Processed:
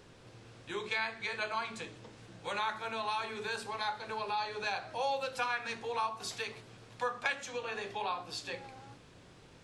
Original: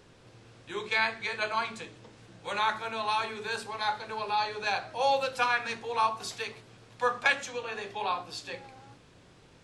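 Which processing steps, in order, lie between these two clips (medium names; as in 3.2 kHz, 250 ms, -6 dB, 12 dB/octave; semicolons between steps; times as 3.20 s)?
compression 2:1, threshold -36 dBFS, peak gain reduction 9 dB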